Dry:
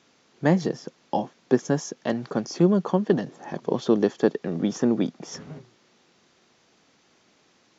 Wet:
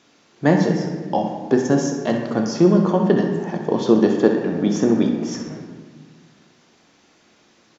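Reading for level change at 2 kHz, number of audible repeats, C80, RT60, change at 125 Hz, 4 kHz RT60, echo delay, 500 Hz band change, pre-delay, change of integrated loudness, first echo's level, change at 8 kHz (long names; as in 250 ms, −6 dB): +6.0 dB, 1, 6.0 dB, 1.4 s, +5.5 dB, 0.90 s, 64 ms, +5.5 dB, 3 ms, +5.5 dB, −10.0 dB, can't be measured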